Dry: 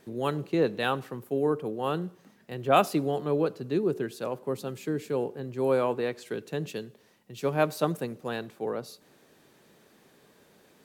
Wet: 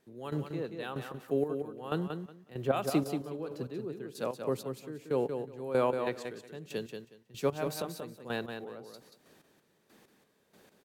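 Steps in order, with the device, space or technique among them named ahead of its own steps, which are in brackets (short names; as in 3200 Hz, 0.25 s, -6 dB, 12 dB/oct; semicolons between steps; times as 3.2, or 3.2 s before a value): trance gate with a delay (step gate "..x...x.x." 94 bpm -12 dB; feedback echo 0.183 s, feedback 19%, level -6.5 dB); gain -1 dB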